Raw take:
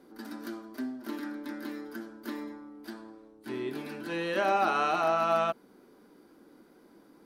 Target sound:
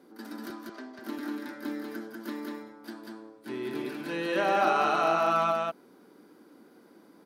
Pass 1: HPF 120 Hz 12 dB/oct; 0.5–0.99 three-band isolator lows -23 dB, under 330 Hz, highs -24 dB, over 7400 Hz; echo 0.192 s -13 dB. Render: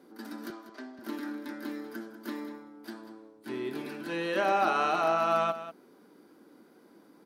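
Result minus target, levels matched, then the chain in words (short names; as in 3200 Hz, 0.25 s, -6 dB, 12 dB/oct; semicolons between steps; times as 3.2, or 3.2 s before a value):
echo-to-direct -10.5 dB
HPF 120 Hz 12 dB/oct; 0.5–0.99 three-band isolator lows -23 dB, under 330 Hz, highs -24 dB, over 7400 Hz; echo 0.192 s -2.5 dB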